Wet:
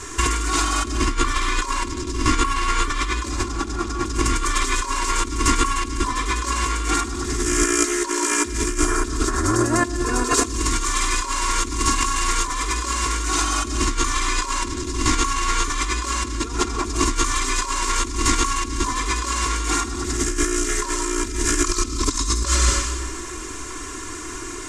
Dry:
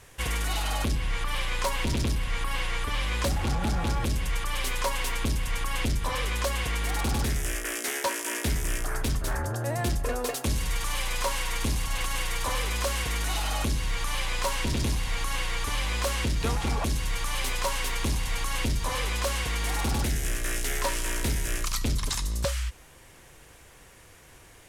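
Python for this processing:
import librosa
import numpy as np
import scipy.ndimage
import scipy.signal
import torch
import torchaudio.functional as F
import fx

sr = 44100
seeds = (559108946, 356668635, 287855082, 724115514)

y = fx.curve_eq(x, sr, hz=(130.0, 340.0, 670.0, 1100.0, 1800.0, 3100.0, 7400.0, 15000.0), db=(0, 11, -9, 10, 2, -1, 11, -20))
y = fx.rev_freeverb(y, sr, rt60_s=1.1, hf_ratio=1.0, predelay_ms=65, drr_db=4.5)
y = fx.over_compress(y, sr, threshold_db=-29.0, ratio=-0.5)
y = y + 0.82 * np.pad(y, (int(2.9 * sr / 1000.0), 0))[:len(y)]
y = F.gain(torch.from_numpy(y), 6.0).numpy()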